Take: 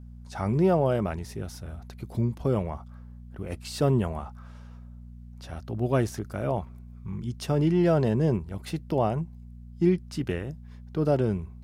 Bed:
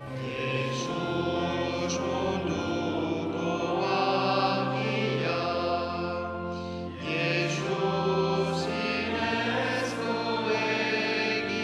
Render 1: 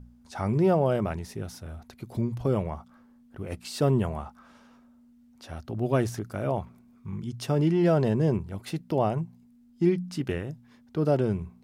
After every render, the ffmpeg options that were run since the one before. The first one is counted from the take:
-af "bandreject=f=60:t=h:w=4,bandreject=f=120:t=h:w=4,bandreject=f=180:t=h:w=4"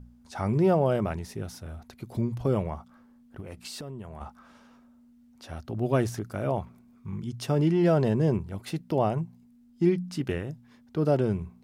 -filter_complex "[0:a]asettb=1/sr,asplit=3[s0][s1][s2];[s0]atrim=end=3.404[s3];[s1]atrim=start=3.4:end=4.21,asetpts=PTS-STARTPTS,afade=t=in:d=0.004:c=qsin,afade=t=out:st=0.806:d=0.004:c=qsin,acompressor=threshold=0.0178:ratio=16:attack=3.2:release=140:knee=1:detection=peak[s4];[s2]atrim=start=4.206[s5];[s3][s4]acrossfade=d=0.004:c1=hsin:c2=qsin[s6];[s6][s5]acrossfade=d=0.004:c1=qsin:c2=hsin"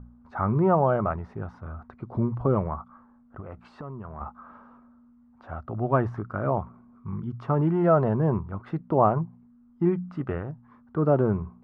-af "aphaser=in_gain=1:out_gain=1:delay=1.6:decay=0.24:speed=0.44:type=triangular,lowpass=f=1200:t=q:w=3.4"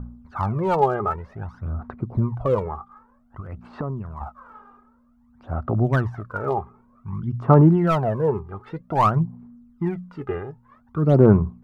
-af "asoftclip=type=hard:threshold=0.211,aphaser=in_gain=1:out_gain=1:delay=2.5:decay=0.72:speed=0.53:type=sinusoidal"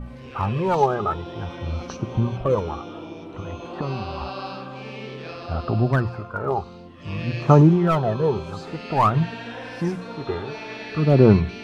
-filter_complex "[1:a]volume=0.422[s0];[0:a][s0]amix=inputs=2:normalize=0"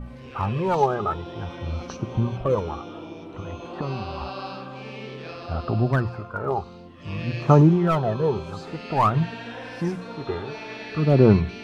-af "volume=0.841"

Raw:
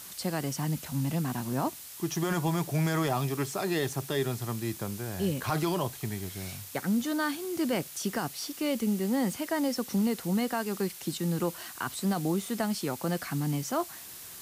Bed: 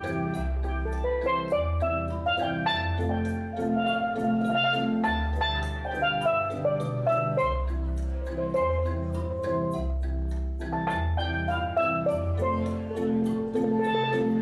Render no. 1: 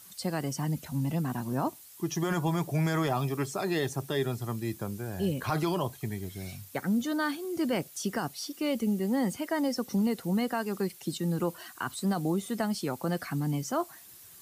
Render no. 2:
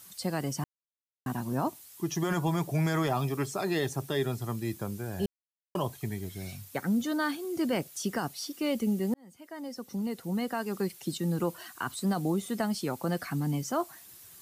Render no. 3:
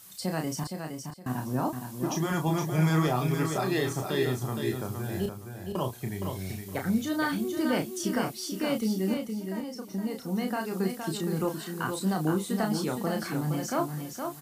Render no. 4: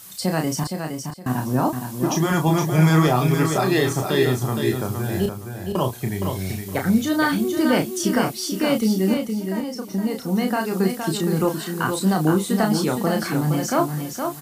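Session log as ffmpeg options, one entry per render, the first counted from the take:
-af "afftdn=nr=10:nf=-45"
-filter_complex "[0:a]asplit=6[s0][s1][s2][s3][s4][s5];[s0]atrim=end=0.64,asetpts=PTS-STARTPTS,afade=t=out:st=0.636:d=0.004:c=hsin[s6];[s1]atrim=start=0.64:end=1.26,asetpts=PTS-STARTPTS,volume=0[s7];[s2]atrim=start=1.26:end=5.26,asetpts=PTS-STARTPTS,afade=t=in:d=0.004:c=hsin,afade=t=out:st=3.996:d=0.004:c=hsin[s8];[s3]atrim=start=5.26:end=5.75,asetpts=PTS-STARTPTS,volume=0[s9];[s4]atrim=start=5.75:end=9.14,asetpts=PTS-STARTPTS,afade=t=in:d=0.004:c=hsin,afade=t=out:st=3.386:d=0.004:c=hsin[s10];[s5]atrim=start=9.14,asetpts=PTS-STARTPTS,afade=t=in:d=1.74[s11];[s6][s7][s8][s9][s10][s11]concat=n=6:v=0:a=1"
-filter_complex "[0:a]asplit=2[s0][s1];[s1]adelay=32,volume=0.562[s2];[s0][s2]amix=inputs=2:normalize=0,asplit=2[s3][s4];[s4]aecho=0:1:466|932|1398:0.501|0.125|0.0313[s5];[s3][s5]amix=inputs=2:normalize=0"
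-af "volume=2.66"

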